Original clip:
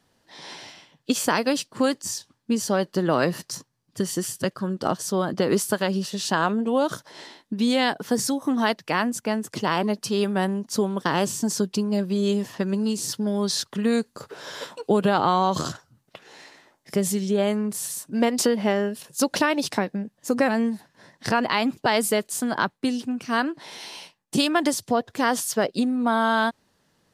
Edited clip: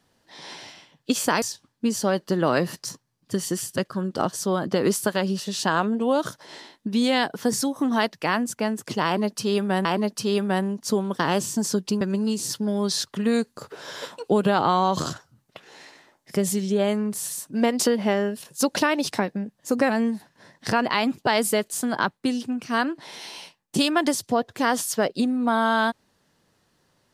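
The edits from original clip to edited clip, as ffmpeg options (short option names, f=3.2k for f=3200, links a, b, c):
-filter_complex "[0:a]asplit=4[a][b][c][d];[a]atrim=end=1.422[e];[b]atrim=start=2.078:end=10.512[f];[c]atrim=start=9.708:end=11.872[g];[d]atrim=start=12.598[h];[e][f]acrossfade=d=0.004:c1=hsin:c2=hsin[i];[i][g]acrossfade=d=0.004:c1=hsin:c2=hsin[j];[j][h]acrossfade=d=0.004:c1=hsin:c2=hsin"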